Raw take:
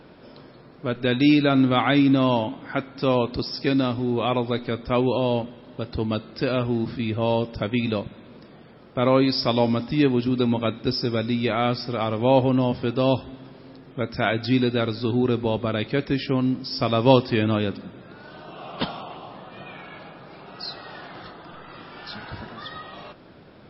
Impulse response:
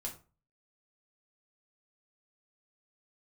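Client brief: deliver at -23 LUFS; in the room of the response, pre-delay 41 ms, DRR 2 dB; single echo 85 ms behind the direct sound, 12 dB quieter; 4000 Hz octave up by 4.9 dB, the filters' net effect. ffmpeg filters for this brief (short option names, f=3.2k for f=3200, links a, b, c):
-filter_complex "[0:a]equalizer=f=4k:t=o:g=6,aecho=1:1:85:0.251,asplit=2[a][b];[1:a]atrim=start_sample=2205,adelay=41[c];[b][c]afir=irnorm=-1:irlink=0,volume=-0.5dB[d];[a][d]amix=inputs=2:normalize=0,volume=-3.5dB"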